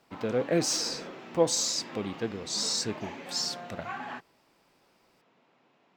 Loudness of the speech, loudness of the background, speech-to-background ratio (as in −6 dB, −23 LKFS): −29.5 LKFS, −42.0 LKFS, 12.5 dB